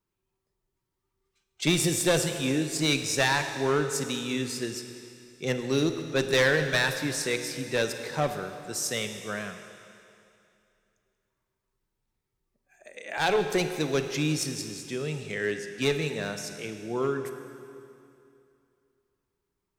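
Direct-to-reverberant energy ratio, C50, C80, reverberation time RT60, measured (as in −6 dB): 7.0 dB, 7.5 dB, 8.5 dB, 2.6 s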